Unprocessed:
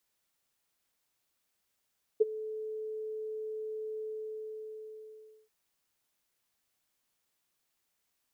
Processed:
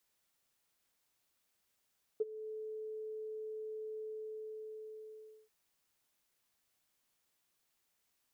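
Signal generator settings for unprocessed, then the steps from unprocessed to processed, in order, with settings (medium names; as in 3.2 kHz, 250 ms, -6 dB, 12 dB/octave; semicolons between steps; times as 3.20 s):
ADSR sine 434 Hz, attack 15 ms, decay 21 ms, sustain -18.5 dB, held 1.81 s, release 1480 ms -17 dBFS
compression 1.5:1, threshold -51 dBFS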